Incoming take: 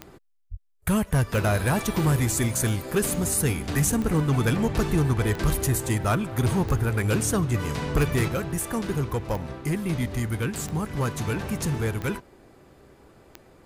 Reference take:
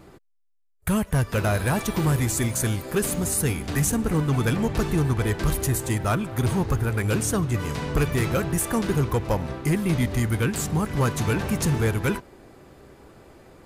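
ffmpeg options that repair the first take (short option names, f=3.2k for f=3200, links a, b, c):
-filter_complex "[0:a]adeclick=t=4,asplit=3[a][b][c];[a]afade=t=out:st=0.5:d=0.02[d];[b]highpass=f=140:w=0.5412,highpass=f=140:w=1.3066,afade=t=in:st=0.5:d=0.02,afade=t=out:st=0.62:d=0.02[e];[c]afade=t=in:st=0.62:d=0.02[f];[d][e][f]amix=inputs=3:normalize=0,asplit=3[g][h][i];[g]afade=t=out:st=4.91:d=0.02[j];[h]highpass=f=140:w=0.5412,highpass=f=140:w=1.3066,afade=t=in:st=4.91:d=0.02,afade=t=out:st=5.03:d=0.02[k];[i]afade=t=in:st=5.03:d=0.02[l];[j][k][l]amix=inputs=3:normalize=0,asetnsamples=n=441:p=0,asendcmd='8.28 volume volume 4dB',volume=0dB"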